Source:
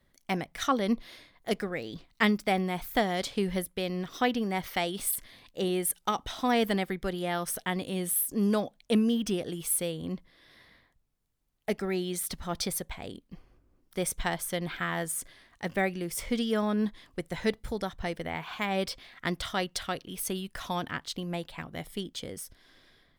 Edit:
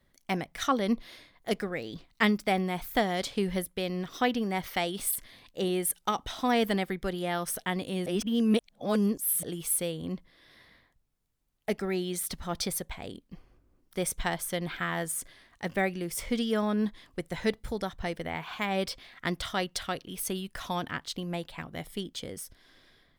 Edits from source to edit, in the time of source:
8.06–9.43 reverse

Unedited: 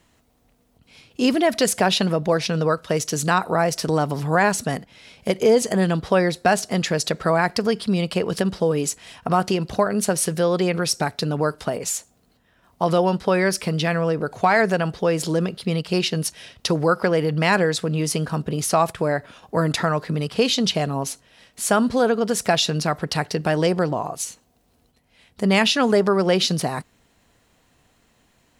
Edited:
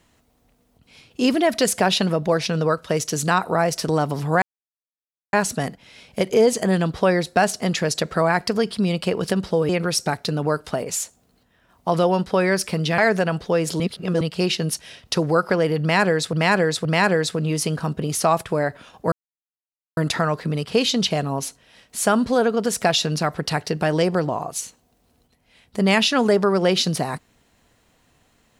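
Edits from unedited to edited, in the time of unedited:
4.42 insert silence 0.91 s
8.78–10.63 cut
13.92–14.51 cut
15.33–15.74 reverse
17.34–17.86 loop, 3 plays
19.61 insert silence 0.85 s

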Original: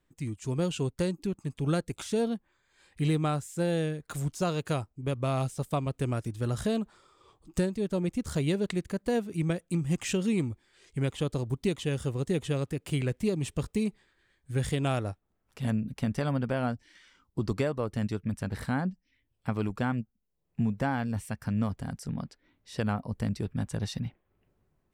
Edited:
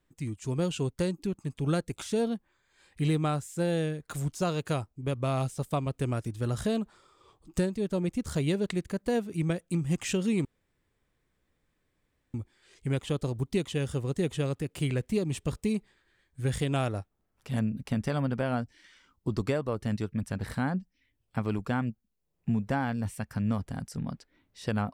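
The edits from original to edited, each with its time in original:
10.45 insert room tone 1.89 s

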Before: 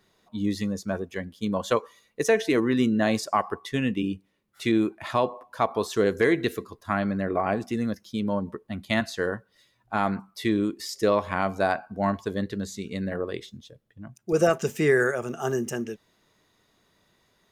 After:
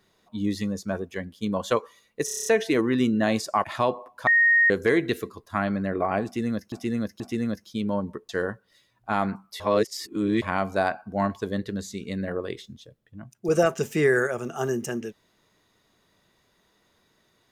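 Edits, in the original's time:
2.25 stutter 0.03 s, 8 plays
3.43–4.99 cut
5.62–6.05 bleep 1860 Hz -15 dBFS
7.59–8.07 loop, 3 plays
8.68–9.13 cut
10.44–11.26 reverse

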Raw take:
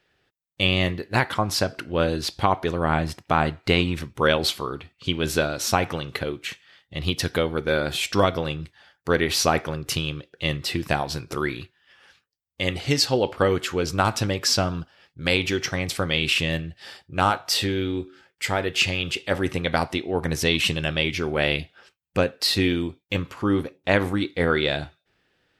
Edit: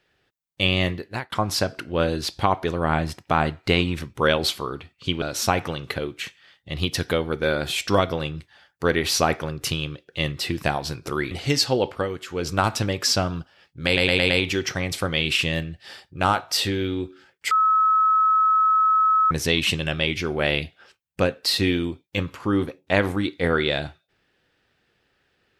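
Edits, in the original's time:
0.93–1.32 fade out
5.22–5.47 cut
11.56–12.72 cut
13.26–13.91 dip -8.5 dB, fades 0.24 s
15.27 stutter 0.11 s, 5 plays
18.48–20.28 bleep 1290 Hz -15 dBFS

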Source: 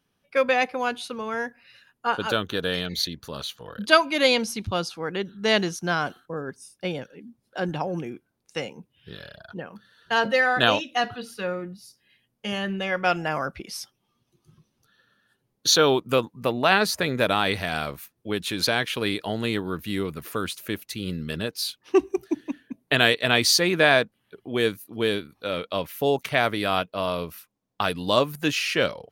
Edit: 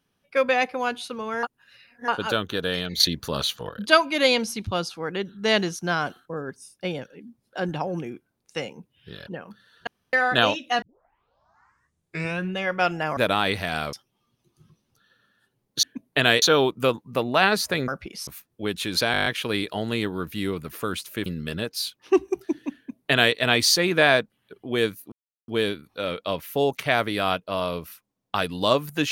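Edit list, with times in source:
1.43–2.08 reverse
3–3.69 gain +7.5 dB
9.27–9.52 cut
10.12–10.38 room tone
11.07 tape start 1.74 s
13.42–13.81 swap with 17.17–17.93
18.78 stutter 0.02 s, 8 plays
20.78–21.08 cut
22.58–23.17 copy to 15.71
24.94 insert silence 0.36 s

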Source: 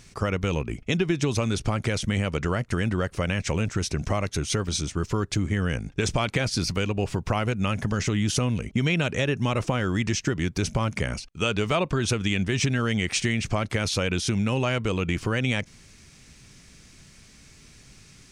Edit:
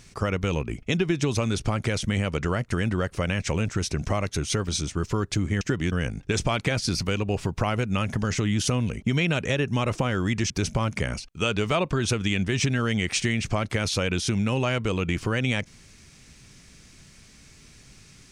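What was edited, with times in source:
10.19–10.5 move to 5.61

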